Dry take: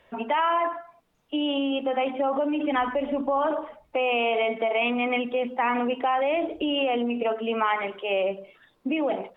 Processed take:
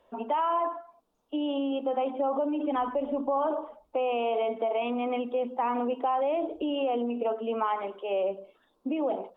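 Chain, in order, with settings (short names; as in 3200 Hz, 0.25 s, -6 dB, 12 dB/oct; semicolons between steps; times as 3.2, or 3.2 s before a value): graphic EQ 125/250/500/1000/2000 Hz -11/+4/+3/+5/-12 dB; gain -6 dB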